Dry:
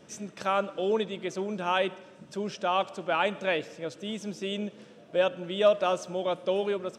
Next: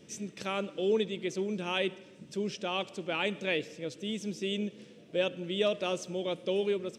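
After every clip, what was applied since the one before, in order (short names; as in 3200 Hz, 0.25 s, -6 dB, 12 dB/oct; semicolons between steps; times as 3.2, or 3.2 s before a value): band shelf 970 Hz -10 dB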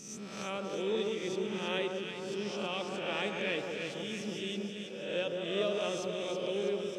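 spectral swells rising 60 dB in 0.94 s; on a send: echo with dull and thin repeats by turns 0.162 s, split 1400 Hz, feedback 78%, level -4 dB; on the sum: gain -6.5 dB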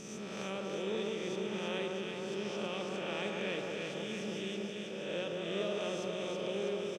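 per-bin compression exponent 0.6; low shelf 210 Hz +6.5 dB; doubler 47 ms -12 dB; gain -7.5 dB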